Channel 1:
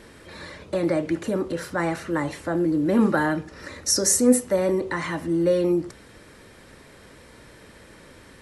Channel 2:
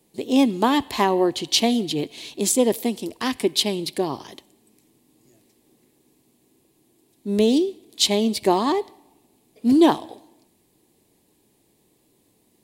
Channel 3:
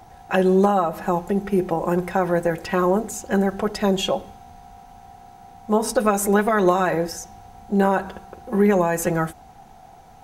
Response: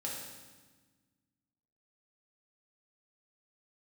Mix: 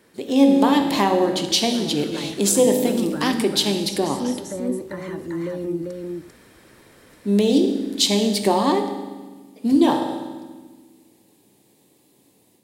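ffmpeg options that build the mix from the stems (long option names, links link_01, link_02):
-filter_complex "[0:a]acrossover=split=410[link_01][link_02];[link_02]acompressor=threshold=-35dB:ratio=3[link_03];[link_01][link_03]amix=inputs=2:normalize=0,volume=-10dB,asplit=2[link_04][link_05];[link_05]volume=-3.5dB[link_06];[1:a]volume=-4dB,asplit=2[link_07][link_08];[link_08]volume=-5.5dB[link_09];[link_04][link_07]amix=inputs=2:normalize=0,highpass=110,acompressor=threshold=-26dB:ratio=6,volume=0dB[link_10];[3:a]atrim=start_sample=2205[link_11];[link_09][link_11]afir=irnorm=-1:irlink=0[link_12];[link_06]aecho=0:1:394:1[link_13];[link_10][link_12][link_13]amix=inputs=3:normalize=0,dynaudnorm=framelen=220:gausssize=3:maxgain=6dB"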